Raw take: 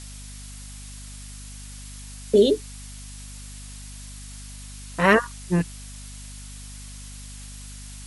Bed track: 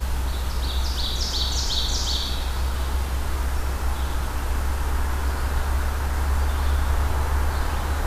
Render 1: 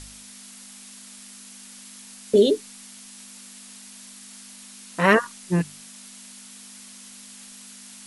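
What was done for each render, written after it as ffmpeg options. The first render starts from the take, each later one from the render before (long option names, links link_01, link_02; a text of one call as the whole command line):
ffmpeg -i in.wav -af "bandreject=frequency=50:width_type=h:width=4,bandreject=frequency=100:width_type=h:width=4,bandreject=frequency=150:width_type=h:width=4" out.wav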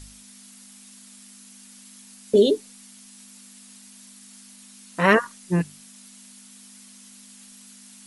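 ffmpeg -i in.wav -af "afftdn=noise_reduction=6:noise_floor=-45" out.wav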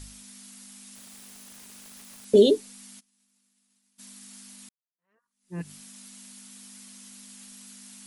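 ffmpeg -i in.wav -filter_complex "[0:a]asettb=1/sr,asplit=3[link_01][link_02][link_03];[link_01]atrim=end=0.954[link_04];[link_02]atrim=start=0.95:end=2.25,asetpts=PTS-STARTPTS,afade=type=in:duration=0.004:curve=qsin,afade=type=out:start_time=1.296:duration=0.004:curve=qsin,aeval=exprs='(mod(106*val(0)+1,2)-1)/106':channel_layout=same[link_05];[link_03]atrim=start=2.246[link_06];[link_04][link_05]acrossfade=duration=0.004:curve1=hsin:curve2=qsin[link_07];[link_07][link_06]acrossfade=duration=0.004:curve1=qsin:curve2=hsin,asplit=3[link_08][link_09][link_10];[link_08]afade=type=out:start_time=2.99:duration=0.02[link_11];[link_09]agate=range=-33dB:threshold=-34dB:ratio=3:release=100:detection=peak,afade=type=in:start_time=2.99:duration=0.02,afade=type=out:start_time=3.98:duration=0.02[link_12];[link_10]afade=type=in:start_time=3.98:duration=0.02[link_13];[link_11][link_12][link_13]amix=inputs=3:normalize=0,asplit=2[link_14][link_15];[link_14]atrim=end=4.69,asetpts=PTS-STARTPTS,afade=type=out:start_time=4.686:duration=0.004:curve=hsin[link_16];[link_15]atrim=start=4.69,asetpts=PTS-STARTPTS,afade=type=in:duration=1.02:curve=exp[link_17];[link_16][link_17]concat=n=2:v=0:a=1" out.wav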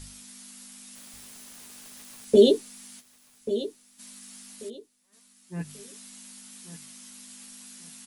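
ffmpeg -i in.wav -filter_complex "[0:a]asplit=2[link_01][link_02];[link_02]adelay=13,volume=-6dB[link_03];[link_01][link_03]amix=inputs=2:normalize=0,aecho=1:1:1137|2274|3411:0.237|0.0617|0.016" out.wav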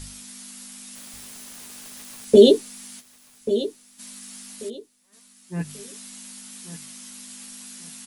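ffmpeg -i in.wav -af "volume=5.5dB,alimiter=limit=-2dB:level=0:latency=1" out.wav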